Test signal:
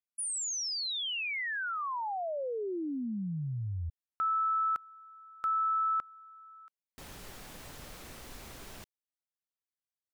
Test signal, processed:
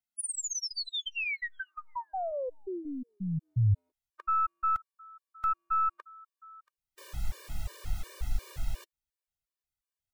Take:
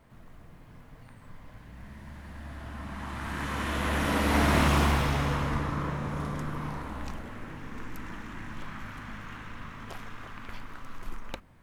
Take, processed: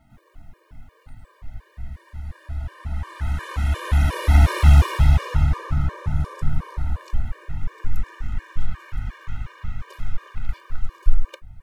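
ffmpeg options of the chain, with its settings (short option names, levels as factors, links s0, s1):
-af "aeval=exprs='0.316*(cos(1*acos(clip(val(0)/0.316,-1,1)))-cos(1*PI/2))+0.0112*(cos(4*acos(clip(val(0)/0.316,-1,1)))-cos(4*PI/2))':c=same,asubboost=boost=12:cutoff=78,afftfilt=real='re*gt(sin(2*PI*2.8*pts/sr)*(1-2*mod(floor(b*sr/1024/310),2)),0)':imag='im*gt(sin(2*PI*2.8*pts/sr)*(1-2*mod(floor(b*sr/1024/310),2)),0)':win_size=1024:overlap=0.75,volume=1.41"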